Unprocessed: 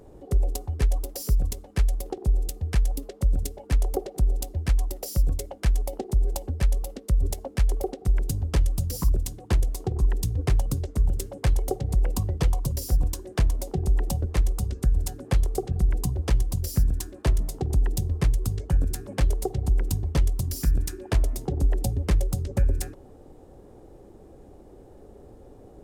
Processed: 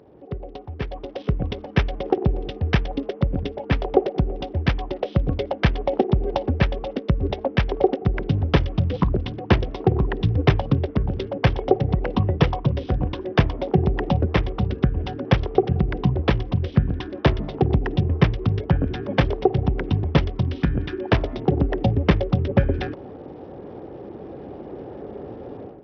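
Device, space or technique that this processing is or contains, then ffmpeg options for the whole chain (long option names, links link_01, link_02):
Bluetooth headset: -af "highpass=120,dynaudnorm=framelen=800:gausssize=3:maxgain=15dB,aresample=8000,aresample=44100" -ar 44100 -c:a sbc -b:a 64k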